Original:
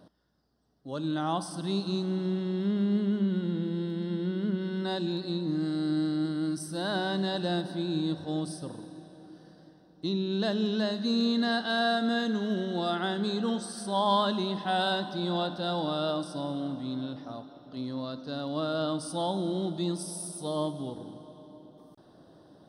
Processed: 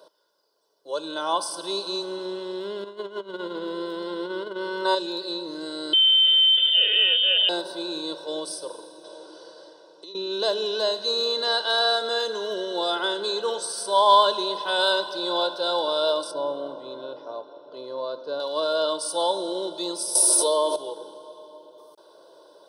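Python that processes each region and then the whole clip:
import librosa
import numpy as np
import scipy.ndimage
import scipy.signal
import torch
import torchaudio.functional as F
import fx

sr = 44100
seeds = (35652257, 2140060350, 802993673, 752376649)

y = fx.chain(x, sr, fx.notch(hz=850.0, q=14.0),
    fx.over_compress(threshold_db=-30.0, ratio=-0.5),
    fx.peak_eq(hz=970.0, db=8.5, octaves=1.2), at=(2.84, 4.95))
y = fx.chain(y, sr, fx.peak_eq(hz=1100.0, db=-9.5, octaves=0.78),
    fx.freq_invert(carrier_hz=3400),
    fx.env_flatten(amount_pct=100), at=(5.93, 7.49))
y = fx.chain(y, sr, fx.peak_eq(hz=110.0, db=-6.5, octaves=2.0),
    fx.over_compress(threshold_db=-38.0, ratio=-0.5),
    fx.lowpass(hz=9200.0, slope=24), at=(9.04, 10.15))
y = fx.chain(y, sr, fx.lowpass(hz=1500.0, slope=6),
    fx.low_shelf(hz=360.0, db=8.0), at=(16.31, 18.4))
y = fx.chain(y, sr, fx.highpass(hz=270.0, slope=24),
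    fx.env_flatten(amount_pct=100), at=(20.15, 20.76))
y = scipy.signal.sosfilt(scipy.signal.bessel(4, 560.0, 'highpass', norm='mag', fs=sr, output='sos'), y)
y = fx.peak_eq(y, sr, hz=1900.0, db=-12.0, octaves=0.67)
y = y + 0.82 * np.pad(y, (int(2.0 * sr / 1000.0), 0))[:len(y)]
y = y * 10.0 ** (8.5 / 20.0)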